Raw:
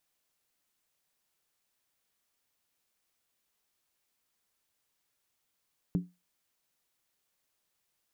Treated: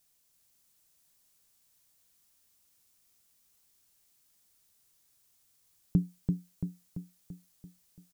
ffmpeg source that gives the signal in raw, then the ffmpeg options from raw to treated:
-f lavfi -i "aevalsrc='0.0794*pow(10,-3*t/0.24)*sin(2*PI*178*t)+0.0299*pow(10,-3*t/0.19)*sin(2*PI*283.7*t)+0.0112*pow(10,-3*t/0.164)*sin(2*PI*380.2*t)+0.00422*pow(10,-3*t/0.158)*sin(2*PI*408.7*t)+0.00158*pow(10,-3*t/0.147)*sin(2*PI*472.2*t)':duration=0.63:sample_rate=44100"
-af "bass=frequency=250:gain=9,treble=frequency=4000:gain=10,aecho=1:1:338|676|1014|1352|1690|2028|2366:0.631|0.341|0.184|0.0994|0.0537|0.029|0.0156"

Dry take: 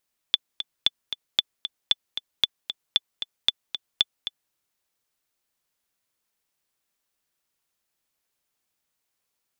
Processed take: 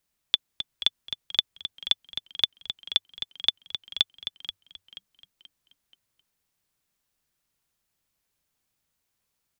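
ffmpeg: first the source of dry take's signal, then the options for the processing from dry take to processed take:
-f lavfi -i "aevalsrc='pow(10,(-5-10.5*gte(mod(t,2*60/229),60/229))/20)*sin(2*PI*3480*mod(t,60/229))*exp(-6.91*mod(t,60/229)/0.03)':duration=4.19:sample_rate=44100"
-filter_complex "[0:a]acrossover=split=190|990[link_01][link_02][link_03];[link_01]aeval=exprs='0.0106*sin(PI/2*1.78*val(0)/0.0106)':channel_layout=same[link_04];[link_04][link_02][link_03]amix=inputs=3:normalize=0,asplit=5[link_05][link_06][link_07][link_08][link_09];[link_06]adelay=481,afreqshift=-100,volume=-13dB[link_10];[link_07]adelay=962,afreqshift=-200,volume=-21.2dB[link_11];[link_08]adelay=1443,afreqshift=-300,volume=-29.4dB[link_12];[link_09]adelay=1924,afreqshift=-400,volume=-37.5dB[link_13];[link_05][link_10][link_11][link_12][link_13]amix=inputs=5:normalize=0"

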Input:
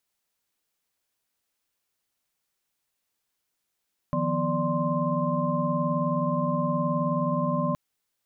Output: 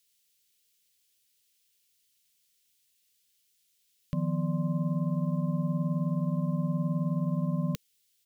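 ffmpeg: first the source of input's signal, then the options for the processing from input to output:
-f lavfi -i "aevalsrc='0.0335*(sin(2*PI*155.56*t)+sin(2*PI*174.61*t)+sin(2*PI*246.94*t)+sin(2*PI*587.33*t)+sin(2*PI*1046.5*t))':duration=3.62:sample_rate=44100"
-af "firequalizer=gain_entry='entry(200,0);entry(280,-10);entry(460,2);entry(730,-27);entry(1200,-11);entry(1900,0);entry(3000,9)':delay=0.05:min_phase=1"

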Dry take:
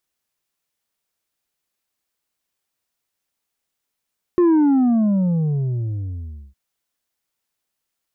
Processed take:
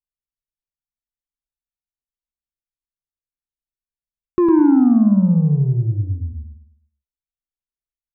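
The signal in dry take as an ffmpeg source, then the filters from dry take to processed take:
-f lavfi -i "aevalsrc='0.251*clip((2.16-t)/2.09,0,1)*tanh(1.68*sin(2*PI*360*2.16/log(65/360)*(exp(log(65/360)*t/2.16)-1)))/tanh(1.68)':duration=2.16:sample_rate=44100"
-af "anlmdn=6.31,aecho=1:1:0.8:0.52,aecho=1:1:106|212|318|424|530:0.596|0.22|0.0815|0.0302|0.0112"

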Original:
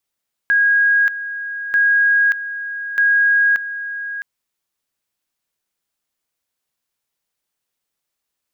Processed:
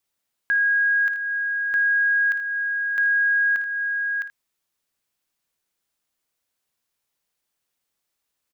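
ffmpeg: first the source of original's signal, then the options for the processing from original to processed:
-f lavfi -i "aevalsrc='pow(10,(-11-12.5*gte(mod(t,1.24),0.58))/20)*sin(2*PI*1640*t)':duration=3.72:sample_rate=44100"
-af "aecho=1:1:55|80:0.211|0.2,alimiter=limit=-16.5dB:level=0:latency=1:release=268"

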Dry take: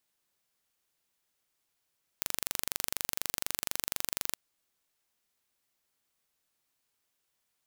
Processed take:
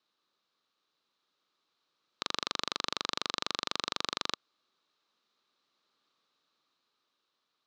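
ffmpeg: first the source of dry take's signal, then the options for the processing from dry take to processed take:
-f lavfi -i "aevalsrc='0.668*eq(mod(n,1830),0)':duration=2.12:sample_rate=44100"
-af "lowshelf=frequency=420:gain=10.5,dynaudnorm=framelen=240:gausssize=13:maxgain=9dB,highpass=300,equalizer=frequency=710:width_type=q:width=4:gain=-4,equalizer=frequency=1200:width_type=q:width=4:gain=10,equalizer=frequency=2000:width_type=q:width=4:gain=-4,equalizer=frequency=3900:width_type=q:width=4:gain=9,lowpass=frequency=5300:width=0.5412,lowpass=frequency=5300:width=1.3066"

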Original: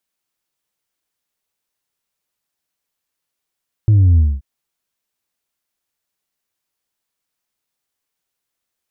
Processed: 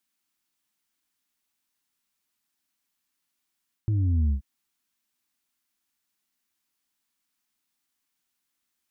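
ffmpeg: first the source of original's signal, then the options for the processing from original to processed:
-f lavfi -i "aevalsrc='0.398*clip((0.53-t)/0.23,0,1)*tanh(1.26*sin(2*PI*110*0.53/log(65/110)*(exp(log(65/110)*t/0.53)-1)))/tanh(1.26)':duration=0.53:sample_rate=44100"
-af "lowshelf=frequency=200:gain=-4,areverse,acompressor=threshold=-21dB:ratio=6,areverse,equalizer=frequency=125:width_type=o:width=1:gain=-4,equalizer=frequency=250:width_type=o:width=1:gain=8,equalizer=frequency=500:width_type=o:width=1:gain=-11"

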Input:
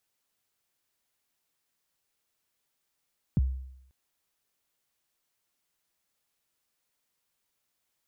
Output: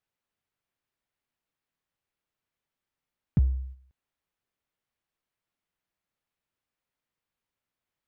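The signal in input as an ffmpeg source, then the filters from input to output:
-f lavfi -i "aevalsrc='0.119*pow(10,-3*t/0.77)*sin(2*PI*(220*0.027/log(65/220)*(exp(log(65/220)*min(t,0.027)/0.027)-1)+65*max(t-0.027,0)))':duration=0.54:sample_rate=44100"
-filter_complex "[0:a]agate=range=-7dB:threshold=-47dB:ratio=16:detection=peak,bass=frequency=250:gain=4,treble=frequency=4000:gain=-12,asplit=2[link_01][link_02];[link_02]asoftclip=type=hard:threshold=-33dB,volume=-9dB[link_03];[link_01][link_03]amix=inputs=2:normalize=0"

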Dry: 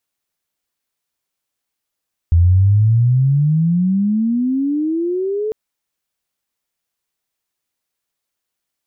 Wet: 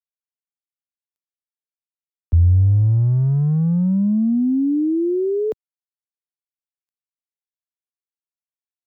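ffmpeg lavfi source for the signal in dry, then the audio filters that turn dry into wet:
-f lavfi -i "aevalsrc='pow(10,(-7.5-10*t/3.2)/20)*sin(2*PI*82.4*3.2/(29*log(2)/12)*(exp(29*log(2)/12*t/3.2)-1))':duration=3.2:sample_rate=44100"
-filter_complex "[0:a]acrossover=split=120|160|220[link_01][link_02][link_03][link_04];[link_02]asoftclip=type=tanh:threshold=-31.5dB[link_05];[link_01][link_05][link_03][link_04]amix=inputs=4:normalize=0,acrusher=bits=10:mix=0:aa=0.000001"

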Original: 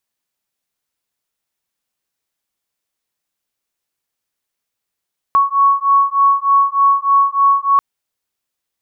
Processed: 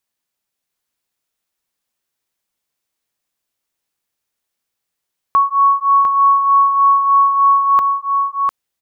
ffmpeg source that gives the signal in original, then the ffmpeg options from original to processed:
-f lavfi -i "aevalsrc='0.224*(sin(2*PI*1110*t)+sin(2*PI*1113.3*t))':duration=2.44:sample_rate=44100"
-af "aecho=1:1:701:0.596"

